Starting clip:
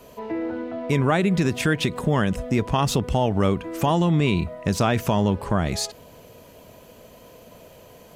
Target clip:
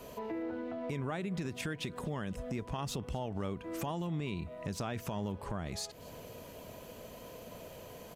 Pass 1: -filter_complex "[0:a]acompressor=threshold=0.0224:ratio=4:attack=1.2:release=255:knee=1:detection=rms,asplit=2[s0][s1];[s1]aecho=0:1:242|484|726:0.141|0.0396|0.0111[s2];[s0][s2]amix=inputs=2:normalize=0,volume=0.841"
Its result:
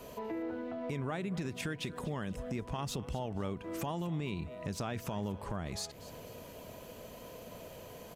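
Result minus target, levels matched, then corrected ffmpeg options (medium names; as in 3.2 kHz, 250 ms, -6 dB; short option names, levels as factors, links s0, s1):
echo-to-direct +7 dB
-filter_complex "[0:a]acompressor=threshold=0.0224:ratio=4:attack=1.2:release=255:knee=1:detection=rms,asplit=2[s0][s1];[s1]aecho=0:1:242|484:0.0631|0.0177[s2];[s0][s2]amix=inputs=2:normalize=0,volume=0.841"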